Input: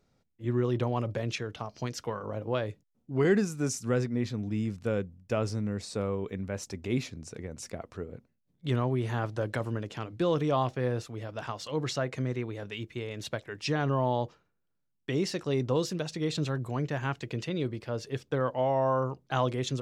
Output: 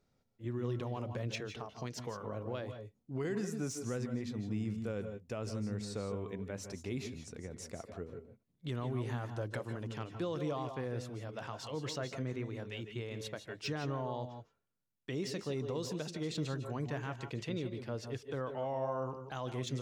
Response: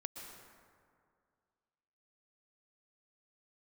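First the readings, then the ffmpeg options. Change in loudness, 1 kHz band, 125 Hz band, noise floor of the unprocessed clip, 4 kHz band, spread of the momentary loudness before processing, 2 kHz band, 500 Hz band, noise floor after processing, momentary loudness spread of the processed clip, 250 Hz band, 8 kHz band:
−8.0 dB, −9.5 dB, −7.5 dB, −76 dBFS, −6.5 dB, 11 LU, −8.0 dB, −8.5 dB, −78 dBFS, 7 LU, −7.5 dB, −6.5 dB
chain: -filter_complex "[0:a]acrossover=split=5100[link_01][link_02];[link_01]alimiter=limit=-23dB:level=0:latency=1:release=169[link_03];[link_02]asoftclip=type=hard:threshold=-38dB[link_04];[link_03][link_04]amix=inputs=2:normalize=0[link_05];[1:a]atrim=start_sample=2205,atrim=end_sample=6174,asetrate=34398,aresample=44100[link_06];[link_05][link_06]afir=irnorm=-1:irlink=0,volume=-2.5dB"

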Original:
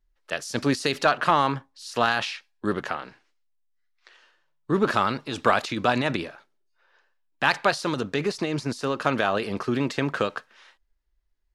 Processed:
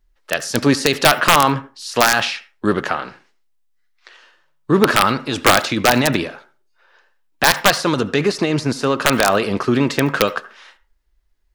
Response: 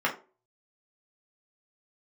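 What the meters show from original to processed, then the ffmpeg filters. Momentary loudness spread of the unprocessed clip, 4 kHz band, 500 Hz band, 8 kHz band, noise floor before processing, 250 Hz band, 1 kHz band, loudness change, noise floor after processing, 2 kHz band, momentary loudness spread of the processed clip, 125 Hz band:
11 LU, +11.5 dB, +8.0 dB, +16.0 dB, −70 dBFS, +8.5 dB, +7.0 dB, +8.5 dB, −61 dBFS, +9.0 dB, 10 LU, +8.5 dB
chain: -filter_complex "[0:a]acontrast=64,aeval=exprs='(mod(1.78*val(0)+1,2)-1)/1.78':channel_layout=same,asplit=2[link_01][link_02];[1:a]atrim=start_sample=2205,highshelf=frequency=9200:gain=8.5,adelay=71[link_03];[link_02][link_03]afir=irnorm=-1:irlink=0,volume=-28dB[link_04];[link_01][link_04]amix=inputs=2:normalize=0,volume=2.5dB"

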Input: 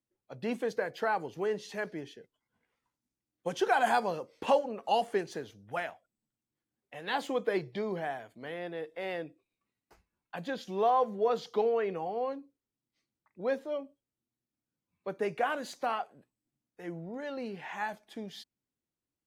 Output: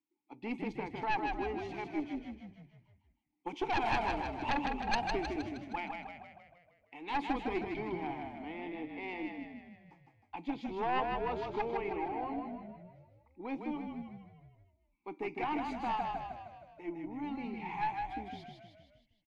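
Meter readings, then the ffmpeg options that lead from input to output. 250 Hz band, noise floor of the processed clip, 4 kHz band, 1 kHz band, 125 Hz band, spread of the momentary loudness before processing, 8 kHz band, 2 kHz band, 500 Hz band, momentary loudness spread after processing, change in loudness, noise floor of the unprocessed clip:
+2.0 dB, −75 dBFS, −3.0 dB, −2.5 dB, 0.0 dB, 15 LU, can't be measured, −3.0 dB, −8.5 dB, 16 LU, −4.0 dB, below −85 dBFS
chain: -filter_complex "[0:a]asplit=3[link_01][link_02][link_03];[link_01]bandpass=frequency=300:width_type=q:width=8,volume=0dB[link_04];[link_02]bandpass=frequency=870:width_type=q:width=8,volume=-6dB[link_05];[link_03]bandpass=frequency=2240:width_type=q:width=8,volume=-9dB[link_06];[link_04][link_05][link_06]amix=inputs=3:normalize=0,lowshelf=frequency=350:gain=-8.5,aeval=exprs='0.0376*(cos(1*acos(clip(val(0)/0.0376,-1,1)))-cos(1*PI/2))+0.0168*(cos(2*acos(clip(val(0)/0.0376,-1,1)))-cos(2*PI/2))+0.0188*(cos(3*acos(clip(val(0)/0.0376,-1,1)))-cos(3*PI/2))+0.0188*(cos(5*acos(clip(val(0)/0.0376,-1,1)))-cos(5*PI/2))+0.00237*(cos(6*acos(clip(val(0)/0.0376,-1,1)))-cos(6*PI/2))':channel_layout=same,asplit=8[link_07][link_08][link_09][link_10][link_11][link_12][link_13][link_14];[link_08]adelay=156,afreqshift=-34,volume=-4dB[link_15];[link_09]adelay=312,afreqshift=-68,volume=-9.2dB[link_16];[link_10]adelay=468,afreqshift=-102,volume=-14.4dB[link_17];[link_11]adelay=624,afreqshift=-136,volume=-19.6dB[link_18];[link_12]adelay=780,afreqshift=-170,volume=-24.8dB[link_19];[link_13]adelay=936,afreqshift=-204,volume=-30dB[link_20];[link_14]adelay=1092,afreqshift=-238,volume=-35.2dB[link_21];[link_07][link_15][link_16][link_17][link_18][link_19][link_20][link_21]amix=inputs=8:normalize=0,volume=7.5dB"

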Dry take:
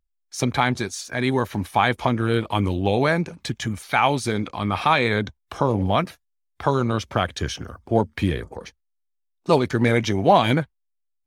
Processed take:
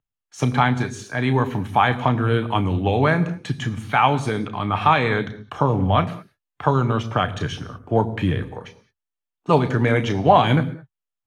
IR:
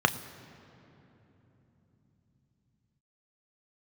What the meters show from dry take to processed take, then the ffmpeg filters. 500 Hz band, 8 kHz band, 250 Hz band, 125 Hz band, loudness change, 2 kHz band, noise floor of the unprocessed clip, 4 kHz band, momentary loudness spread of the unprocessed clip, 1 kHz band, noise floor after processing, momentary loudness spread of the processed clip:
0.0 dB, −6.5 dB, +1.0 dB, +4.0 dB, +1.5 dB, +0.5 dB, −74 dBFS, −1.5 dB, 11 LU, +2.5 dB, −85 dBFS, 11 LU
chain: -filter_complex "[1:a]atrim=start_sample=2205,afade=type=out:start_time=0.27:duration=0.01,atrim=end_sample=12348[link_01];[0:a][link_01]afir=irnorm=-1:irlink=0,volume=-12.5dB"

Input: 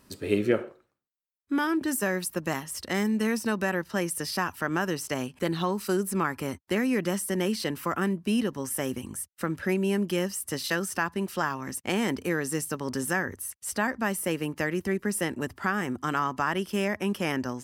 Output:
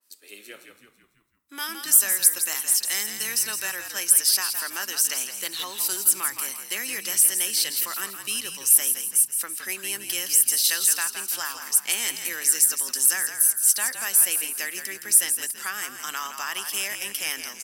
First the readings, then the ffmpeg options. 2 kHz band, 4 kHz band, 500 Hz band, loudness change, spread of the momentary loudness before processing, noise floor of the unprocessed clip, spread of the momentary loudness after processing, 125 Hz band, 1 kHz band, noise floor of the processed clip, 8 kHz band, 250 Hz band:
+0.5 dB, +9.5 dB, −14.5 dB, +7.5 dB, 5 LU, −76 dBFS, 12 LU, below −20 dB, −6.0 dB, −54 dBFS, +17.0 dB, −20.0 dB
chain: -filter_complex "[0:a]highpass=frequency=200:width=0.5412,highpass=frequency=200:width=1.3066,aderivative,asplit=6[link_01][link_02][link_03][link_04][link_05][link_06];[link_02]adelay=166,afreqshift=-57,volume=-8.5dB[link_07];[link_03]adelay=332,afreqshift=-114,volume=-15.6dB[link_08];[link_04]adelay=498,afreqshift=-171,volume=-22.8dB[link_09];[link_05]adelay=664,afreqshift=-228,volume=-29.9dB[link_10];[link_06]adelay=830,afreqshift=-285,volume=-37dB[link_11];[link_01][link_07][link_08][link_09][link_10][link_11]amix=inputs=6:normalize=0,dynaudnorm=framelen=290:gausssize=7:maxgain=10dB,adynamicequalizer=threshold=0.00501:dfrequency=2000:dqfactor=0.7:tfrequency=2000:tqfactor=0.7:attack=5:release=100:ratio=0.375:range=3:mode=boostabove:tftype=highshelf,volume=-1dB"

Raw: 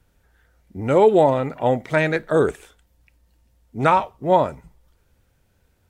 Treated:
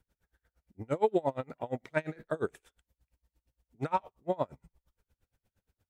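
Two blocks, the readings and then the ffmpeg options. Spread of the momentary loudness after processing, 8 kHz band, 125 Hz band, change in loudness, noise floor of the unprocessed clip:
10 LU, can't be measured, −14.5 dB, −15.0 dB, −64 dBFS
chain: -af "aeval=exprs='val(0)*pow(10,-31*(0.5-0.5*cos(2*PI*8.6*n/s))/20)':channel_layout=same,volume=-8.5dB"

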